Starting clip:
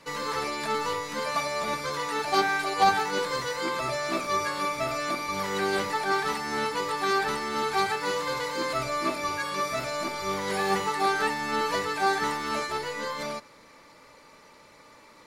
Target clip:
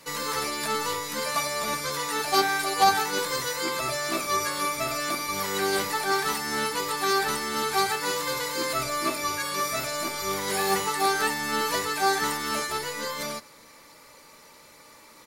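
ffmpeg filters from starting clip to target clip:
-filter_complex "[0:a]aemphasis=mode=production:type=50fm,asplit=2[a][b];[b]adelay=13,volume=-13dB[c];[a][c]amix=inputs=2:normalize=0"

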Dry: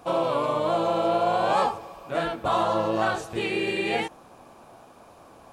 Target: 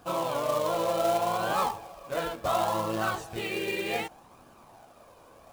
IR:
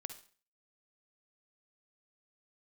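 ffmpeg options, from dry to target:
-af "flanger=delay=0.6:depth=1.5:regen=46:speed=0.67:shape=triangular,acrusher=bits=3:mode=log:mix=0:aa=0.000001"

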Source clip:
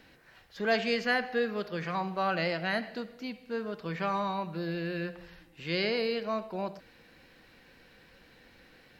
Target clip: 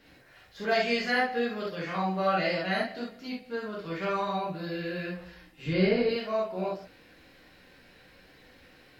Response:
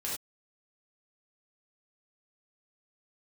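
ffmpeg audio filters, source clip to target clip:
-filter_complex "[0:a]asettb=1/sr,asplit=3[a][b][c];[a]atrim=end=5.664[d];[b]atrim=start=5.66:end=6.09,asetpts=PTS-STARTPTS,afade=t=in:d=0.004:c=qsin,afade=t=out:st=0.426:d=0.004:c=qsin,aemphasis=mode=reproduction:type=riaa[e];[c]atrim=start=6.086[f];[d][e]acrossfade=d=0.004:c1=hsin:c2=qsin[g];[g][f]acrossfade=d=0.004:c1=qsin:c2=hsin[h];[1:a]atrim=start_sample=2205,asetrate=57330,aresample=44100[i];[h][i]afir=irnorm=-1:irlink=0,volume=1.5dB"

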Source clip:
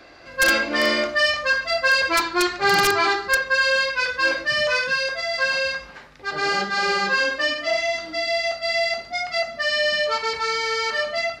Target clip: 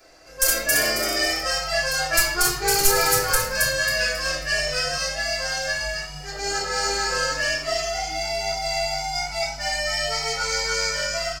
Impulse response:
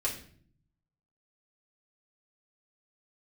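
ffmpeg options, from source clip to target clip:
-filter_complex "[0:a]asubboost=boost=10.5:cutoff=54,asplit=5[a][b][c][d][e];[b]adelay=271,afreqshift=100,volume=-3dB[f];[c]adelay=542,afreqshift=200,volume=-12.6dB[g];[d]adelay=813,afreqshift=300,volume=-22.3dB[h];[e]adelay=1084,afreqshift=400,volume=-31.9dB[i];[a][f][g][h][i]amix=inputs=5:normalize=0[j];[1:a]atrim=start_sample=2205,asetrate=52920,aresample=44100[k];[j][k]afir=irnorm=-1:irlink=0,aexciter=amount=6:drive=6.6:freq=5.2k,volume=-9.5dB"

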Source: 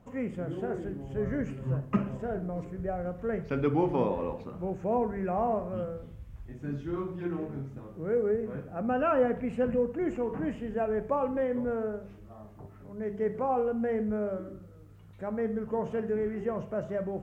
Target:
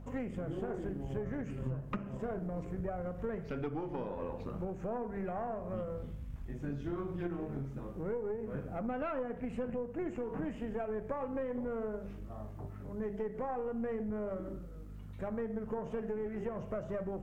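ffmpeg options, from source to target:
-af "aeval=exprs='val(0)+0.00398*(sin(2*PI*50*n/s)+sin(2*PI*2*50*n/s)/2+sin(2*PI*3*50*n/s)/3+sin(2*PI*4*50*n/s)/4+sin(2*PI*5*50*n/s)/5)':c=same,acompressor=threshold=-35dB:ratio=12,aeval=exprs='0.376*(cos(1*acos(clip(val(0)/0.376,-1,1)))-cos(1*PI/2))+0.0944*(cos(6*acos(clip(val(0)/0.376,-1,1)))-cos(6*PI/2))':c=same,volume=1dB"

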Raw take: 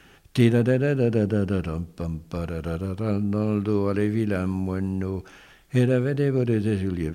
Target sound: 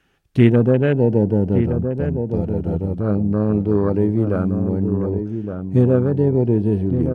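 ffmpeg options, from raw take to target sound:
-filter_complex "[0:a]highshelf=f=5k:g=-3.5,afwtdn=0.0282,asplit=2[a][b];[b]adelay=1166,volume=-7dB,highshelf=f=4k:g=-26.2[c];[a][c]amix=inputs=2:normalize=0,volume=5.5dB"

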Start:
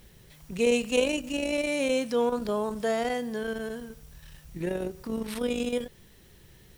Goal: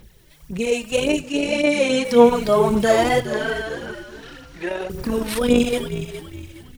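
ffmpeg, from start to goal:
-filter_complex "[0:a]dynaudnorm=f=250:g=11:m=10.5dB,aphaser=in_gain=1:out_gain=1:delay=3.3:decay=0.6:speed=1.8:type=sinusoidal,asettb=1/sr,asplit=3[a][b][c];[a]atrim=end=1.214[d];[b]atrim=start=1.21:end=2.05,asetpts=PTS-STARTPTS,afade=t=in:d=0.004:c=qsin,afade=t=out:st=0.836:d=0.004:c=qsin,highpass=110,lowpass=7.8k[e];[c]atrim=start=2.046[f];[d][e]acrossfade=d=0.004:c1=hsin:c2=qsin[g];[g][f]acrossfade=d=0.004:c1=qsin:c2=hsin,asettb=1/sr,asplit=3[h][i][j];[h]atrim=end=3.204[k];[i]atrim=start=3.2:end=4.9,asetpts=PTS-STARTPTS,afade=t=in:d=0.004:c=qsin,afade=t=out:st=1.696:d=0.004:c=qsin,acrossover=split=560 5900:gain=0.158 1 0.126[l][m][n];[l][m][n]amix=inputs=3:normalize=0[o];[j]atrim=start=4.896[p];[k][o]acrossfade=d=0.004:c1=hsin:c2=qsin[q];[q][p]acrossfade=d=0.004:c1=qsin:c2=hsin,asplit=5[r][s][t][u][v];[s]adelay=415,afreqshift=-77,volume=-11.5dB[w];[t]adelay=830,afreqshift=-154,volume=-19.9dB[x];[u]adelay=1245,afreqshift=-231,volume=-28.3dB[y];[v]adelay=1660,afreqshift=-308,volume=-36.7dB[z];[r][w][x][y][z]amix=inputs=5:normalize=0"

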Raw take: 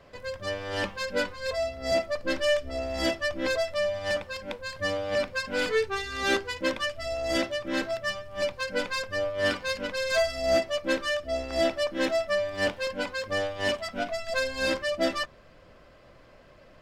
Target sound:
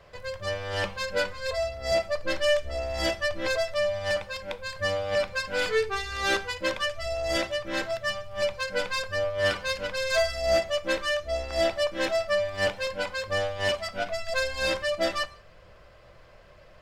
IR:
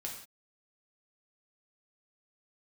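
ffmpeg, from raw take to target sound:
-filter_complex "[0:a]equalizer=f=260:t=o:w=0.55:g=-14.5,asplit=2[a][b];[1:a]atrim=start_sample=2205,lowshelf=f=170:g=10[c];[b][c]afir=irnorm=-1:irlink=0,volume=-11.5dB[d];[a][d]amix=inputs=2:normalize=0"

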